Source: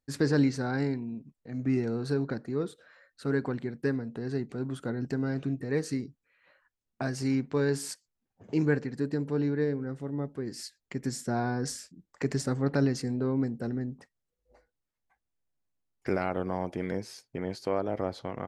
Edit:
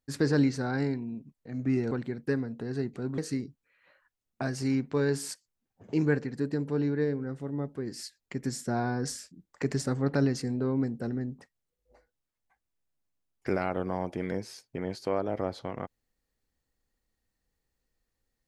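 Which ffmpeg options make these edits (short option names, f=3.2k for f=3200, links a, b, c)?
-filter_complex "[0:a]asplit=3[a][b][c];[a]atrim=end=1.912[d];[b]atrim=start=3.468:end=4.742[e];[c]atrim=start=5.778[f];[d][e]acrossfade=d=0.004:c1=hsin:c2=hsin[g];[g][f]acrossfade=d=0.004:c1=hsin:c2=hsin"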